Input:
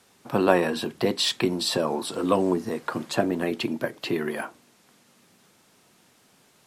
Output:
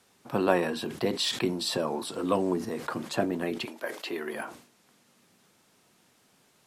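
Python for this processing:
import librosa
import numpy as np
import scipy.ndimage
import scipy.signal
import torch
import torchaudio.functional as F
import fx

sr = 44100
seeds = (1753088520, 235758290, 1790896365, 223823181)

y = fx.highpass(x, sr, hz=fx.line((3.64, 700.0), (4.33, 290.0)), slope=12, at=(3.64, 4.33), fade=0.02)
y = fx.sustainer(y, sr, db_per_s=110.0)
y = y * 10.0 ** (-4.5 / 20.0)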